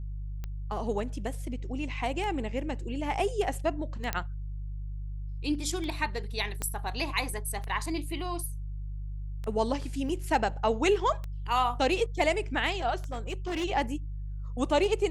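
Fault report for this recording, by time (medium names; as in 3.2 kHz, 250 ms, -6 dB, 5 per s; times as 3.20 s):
hum 50 Hz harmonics 3 -36 dBFS
tick 33 1/3 rpm -24 dBFS
4.13 s: pop -13 dBFS
6.62 s: pop -18 dBFS
10.09 s: dropout 3.5 ms
13.12–13.65 s: clipped -28.5 dBFS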